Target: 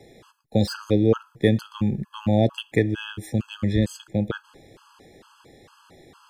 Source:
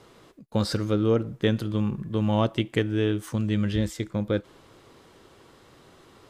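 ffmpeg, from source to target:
ffmpeg -i in.wav -filter_complex "[0:a]acrossover=split=170|3100[link_01][link_02][link_03];[link_03]asoftclip=type=hard:threshold=-34.5dB[link_04];[link_01][link_02][link_04]amix=inputs=3:normalize=0,afftfilt=real='re*gt(sin(2*PI*2.2*pts/sr)*(1-2*mod(floor(b*sr/1024/840),2)),0)':imag='im*gt(sin(2*PI*2.2*pts/sr)*(1-2*mod(floor(b*sr/1024/840),2)),0)':win_size=1024:overlap=0.75,volume=4.5dB" out.wav

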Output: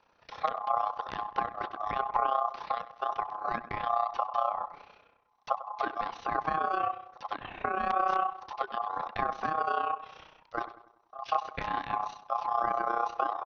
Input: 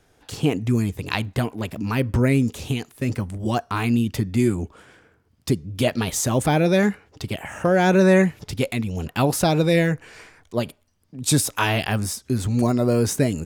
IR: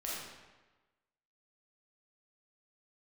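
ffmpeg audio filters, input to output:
-filter_complex "[0:a]aresample=11025,aeval=exprs='(mod(2.51*val(0)+1,2)-1)/2.51':channel_layout=same,aresample=44100,acrossover=split=230[link_01][link_02];[link_02]acompressor=threshold=-27dB:ratio=6[link_03];[link_01][link_03]amix=inputs=2:normalize=0,aeval=exprs='val(0)*sin(2*PI*940*n/s)':channel_layout=same,asplit=2[link_04][link_05];[link_05]adelay=95,lowpass=frequency=2200:poles=1,volume=-13.5dB,asplit=2[link_06][link_07];[link_07]adelay=95,lowpass=frequency=2200:poles=1,volume=0.49,asplit=2[link_08][link_09];[link_09]adelay=95,lowpass=frequency=2200:poles=1,volume=0.49,asplit=2[link_10][link_11];[link_11]adelay=95,lowpass=frequency=2200:poles=1,volume=0.49,asplit=2[link_12][link_13];[link_13]adelay=95,lowpass=frequency=2200:poles=1,volume=0.49[link_14];[link_04][link_06][link_08][link_10][link_12][link_14]amix=inputs=6:normalize=0,tremolo=f=31:d=0.71,acrossover=split=3200[link_15][link_16];[link_16]acompressor=threshold=-59dB:ratio=5[link_17];[link_15][link_17]amix=inputs=2:normalize=0,volume=-1.5dB"

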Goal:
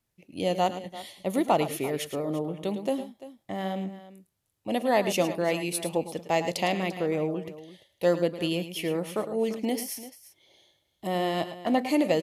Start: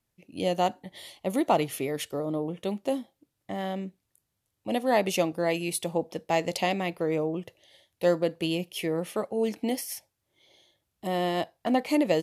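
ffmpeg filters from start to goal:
ffmpeg -i in.wav -af "aecho=1:1:104|109|343:0.141|0.251|0.158" out.wav

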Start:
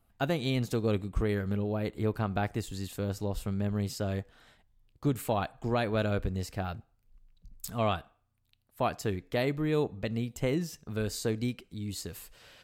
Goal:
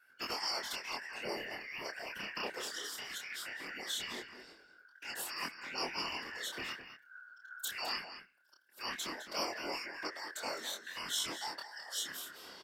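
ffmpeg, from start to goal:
ffmpeg -i in.wav -filter_complex "[0:a]afftfilt=real='real(if(lt(b,272),68*(eq(floor(b/68),0)*1+eq(floor(b/68),1)*0+eq(floor(b/68),2)*3+eq(floor(b/68),3)*2)+mod(b,68),b),0)':imag='imag(if(lt(b,272),68*(eq(floor(b/68),0)*1+eq(floor(b/68),1)*0+eq(floor(b/68),2)*3+eq(floor(b/68),3)*2)+mod(b,68),b),0)':win_size=2048:overlap=0.75,afftfilt=real='re*lt(hypot(re,im),0.0562)':imag='im*lt(hypot(re,im),0.0562)':win_size=1024:overlap=0.75,afftfilt=real='hypot(re,im)*cos(2*PI*random(0))':imag='hypot(re,im)*sin(2*PI*random(1))':win_size=512:overlap=0.75,aexciter=amount=9.2:drive=2.4:freq=3400,acrossover=split=260 3300:gain=0.0891 1 0.0891[link_01][link_02][link_03];[link_01][link_02][link_03]amix=inputs=3:normalize=0,asplit=2[link_04][link_05];[link_05]adelay=209.9,volume=-10dB,highshelf=frequency=4000:gain=-4.72[link_06];[link_04][link_06]amix=inputs=2:normalize=0,flanger=delay=22.5:depth=7.3:speed=0.19,tiltshelf=frequency=790:gain=4.5,volume=14dB" out.wav

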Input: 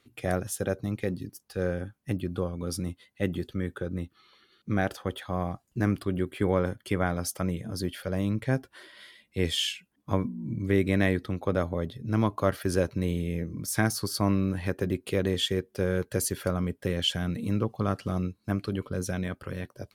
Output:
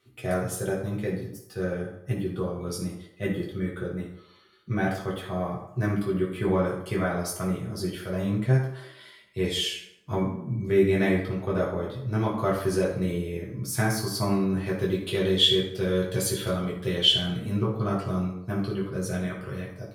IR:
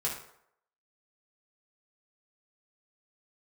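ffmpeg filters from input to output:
-filter_complex "[0:a]asettb=1/sr,asplit=3[link_01][link_02][link_03];[link_01]atrim=end=14.794[link_04];[link_02]atrim=start=14.79:end=17.16,asetpts=PTS-STARTPTS,afade=type=in:duration=0.004:curve=qsin,afade=type=out:start_time=2.366:duration=0.004:curve=qsin,equalizer=frequency=3500:width_type=o:width=0.55:gain=12[link_05];[link_03]atrim=start=17.156[link_06];[link_04][link_05]acrossfade=duration=0.004:curve1=hsin:curve2=qsin[link_07];[link_07][link_06]acrossfade=duration=0.004:curve1=qsin:curve2=hsin[link_08];[1:a]atrim=start_sample=2205,asetrate=38808,aresample=44100[link_09];[link_08][link_09]afir=irnorm=-1:irlink=0,volume=-4.5dB"

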